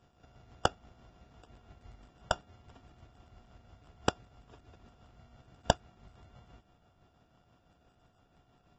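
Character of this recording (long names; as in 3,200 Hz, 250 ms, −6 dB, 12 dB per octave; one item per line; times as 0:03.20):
a buzz of ramps at a fixed pitch in blocks of 32 samples
tremolo triangle 6 Hz, depth 50%
aliases and images of a low sample rate 2,100 Hz, jitter 0%
AAC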